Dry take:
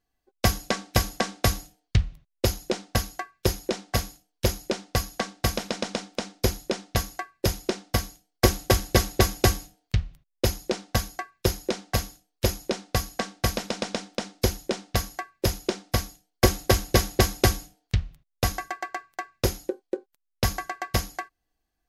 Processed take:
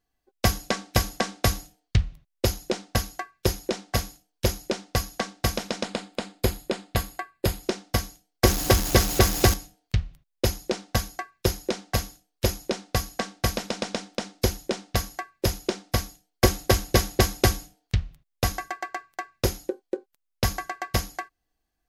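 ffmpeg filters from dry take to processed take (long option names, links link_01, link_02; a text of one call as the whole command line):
ffmpeg -i in.wav -filter_complex "[0:a]asettb=1/sr,asplit=3[link_01][link_02][link_03];[link_01]atrim=end=5.854[link_04];[link_02]atrim=start=5.85:end=7.63,asetpts=PTS-STARTPTS,afade=type=in:duration=0.004:curve=qsin,afade=type=out:start_time=1.776:duration=0.004:curve=qsin,equalizer=frequency=5800:width_type=o:width=0.26:gain=-12.5[link_05];[link_03]atrim=start=7.626[link_06];[link_04][link_05]acrossfade=duration=0.004:curve1=hsin:curve2=qsin[link_07];[link_07][link_06]acrossfade=duration=0.004:curve1=qsin:curve2=hsin,asettb=1/sr,asplit=3[link_08][link_09][link_10];[link_08]atrim=end=8.474[link_11];[link_09]atrim=start=8.47:end=9.54,asetpts=PTS-STARTPTS,afade=type=in:duration=0.004:curve=qsin,afade=type=out:start_time=1.066:duration=0.004:curve=qsin,aeval=exprs='val(0)+0.5*0.0631*sgn(val(0))':channel_layout=same[link_12];[link_10]atrim=start=9.536[link_13];[link_11][link_12]acrossfade=duration=0.004:curve1=hsin:curve2=qsin[link_14];[link_14][link_13]acrossfade=duration=0.004:curve1=qsin:curve2=hsin" out.wav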